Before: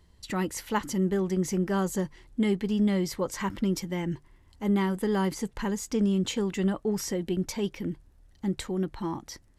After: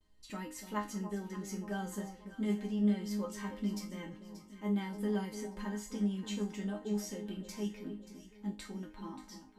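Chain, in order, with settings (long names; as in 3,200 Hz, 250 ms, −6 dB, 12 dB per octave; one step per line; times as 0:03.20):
noise gate with hold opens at −55 dBFS
resonators tuned to a chord G#3 major, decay 0.3 s
on a send: delay that swaps between a low-pass and a high-pass 291 ms, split 950 Hz, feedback 67%, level −9.5 dB
on the sum: level +6.5 dB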